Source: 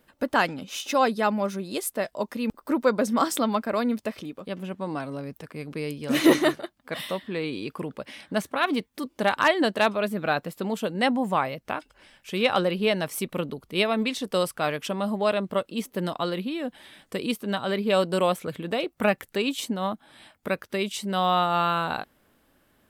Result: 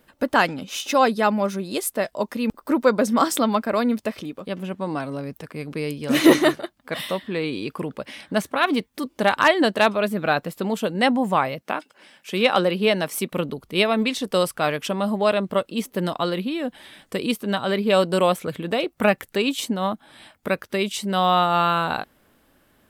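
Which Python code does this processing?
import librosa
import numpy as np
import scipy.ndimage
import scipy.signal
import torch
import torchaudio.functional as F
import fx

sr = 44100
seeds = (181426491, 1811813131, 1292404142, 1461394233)

y = fx.highpass(x, sr, hz=160.0, slope=24, at=(11.61, 13.32))
y = y * 10.0 ** (4.0 / 20.0)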